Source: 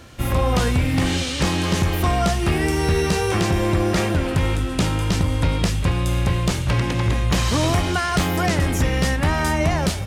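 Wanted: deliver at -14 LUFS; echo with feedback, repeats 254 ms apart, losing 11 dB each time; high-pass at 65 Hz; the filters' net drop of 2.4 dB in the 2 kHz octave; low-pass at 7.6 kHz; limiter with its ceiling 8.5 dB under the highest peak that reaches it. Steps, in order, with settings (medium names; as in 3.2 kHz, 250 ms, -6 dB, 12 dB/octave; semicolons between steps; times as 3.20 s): high-pass 65 Hz; low-pass 7.6 kHz; peaking EQ 2 kHz -3 dB; peak limiter -15.5 dBFS; feedback delay 254 ms, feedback 28%, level -11 dB; trim +10 dB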